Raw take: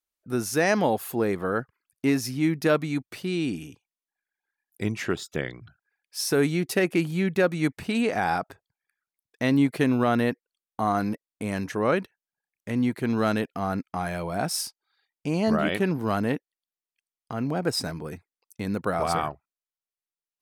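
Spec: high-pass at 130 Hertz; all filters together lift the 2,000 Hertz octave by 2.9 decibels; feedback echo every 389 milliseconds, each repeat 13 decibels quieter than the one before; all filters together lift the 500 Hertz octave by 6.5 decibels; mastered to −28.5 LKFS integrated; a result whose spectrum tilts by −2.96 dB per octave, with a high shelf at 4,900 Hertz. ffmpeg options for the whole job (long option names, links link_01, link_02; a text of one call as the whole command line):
ffmpeg -i in.wav -af "highpass=130,equalizer=frequency=500:width_type=o:gain=8,equalizer=frequency=2000:width_type=o:gain=4,highshelf=frequency=4900:gain=-6,aecho=1:1:389|778|1167:0.224|0.0493|0.0108,volume=-5.5dB" out.wav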